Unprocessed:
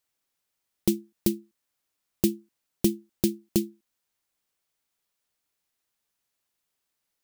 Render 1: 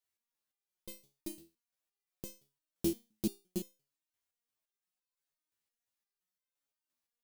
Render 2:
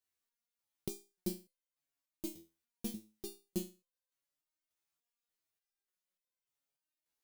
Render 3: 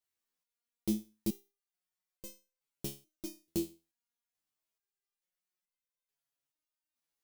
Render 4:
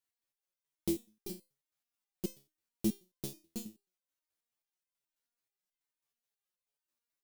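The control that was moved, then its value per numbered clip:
resonator arpeggio, rate: 5.8 Hz, 3.4 Hz, 2.3 Hz, 9.3 Hz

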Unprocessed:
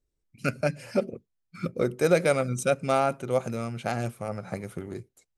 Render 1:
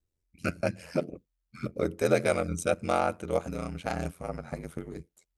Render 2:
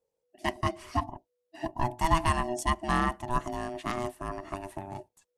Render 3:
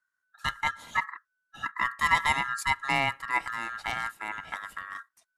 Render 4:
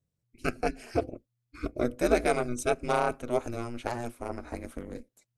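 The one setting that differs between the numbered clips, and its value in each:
ring modulator, frequency: 43 Hz, 490 Hz, 1.5 kHz, 120 Hz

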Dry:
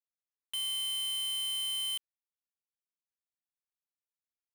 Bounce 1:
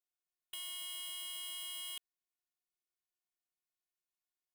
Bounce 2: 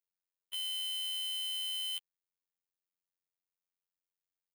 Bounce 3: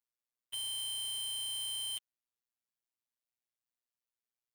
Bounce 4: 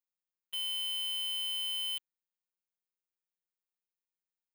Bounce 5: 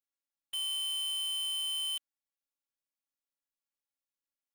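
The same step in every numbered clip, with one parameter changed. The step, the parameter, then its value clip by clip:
robot voice, frequency: 360 Hz, 90 Hz, 120 Hz, 180 Hz, 280 Hz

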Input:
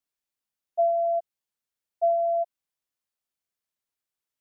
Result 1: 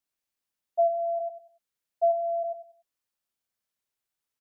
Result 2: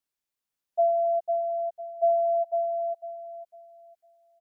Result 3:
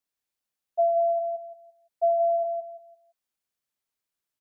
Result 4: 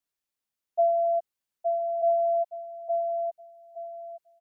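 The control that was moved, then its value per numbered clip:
feedback delay, time: 95 ms, 502 ms, 170 ms, 868 ms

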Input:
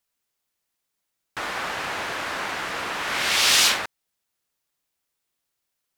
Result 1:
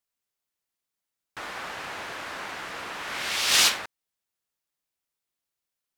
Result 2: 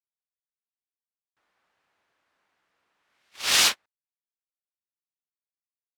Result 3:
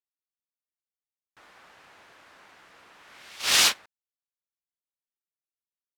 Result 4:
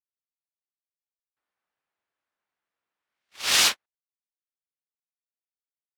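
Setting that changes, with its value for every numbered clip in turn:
gate, range: -7 dB, -46 dB, -25 dB, -60 dB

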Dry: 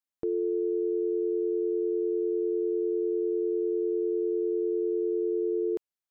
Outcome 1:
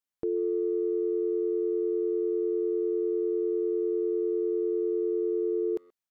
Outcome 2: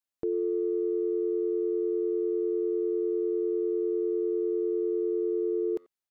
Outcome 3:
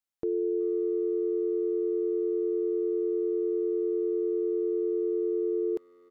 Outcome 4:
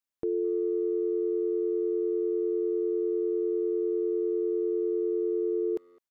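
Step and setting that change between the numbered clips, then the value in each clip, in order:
speakerphone echo, time: 130 ms, 90 ms, 370 ms, 210 ms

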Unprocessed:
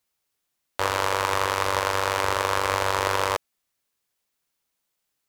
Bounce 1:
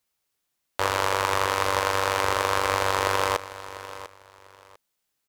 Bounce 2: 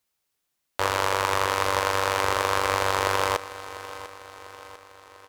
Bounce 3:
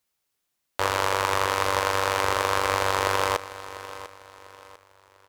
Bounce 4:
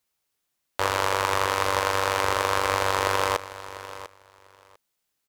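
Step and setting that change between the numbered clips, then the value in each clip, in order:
feedback delay, feedback: 23%, 52%, 35%, 16%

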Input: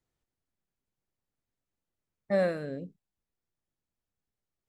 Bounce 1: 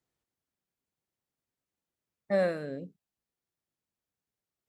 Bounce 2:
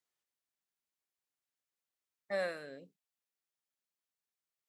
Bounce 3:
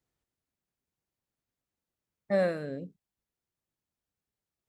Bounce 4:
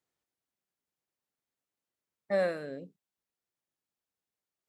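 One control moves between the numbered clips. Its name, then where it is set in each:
high-pass, cutoff frequency: 130 Hz, 1.5 kHz, 47 Hz, 380 Hz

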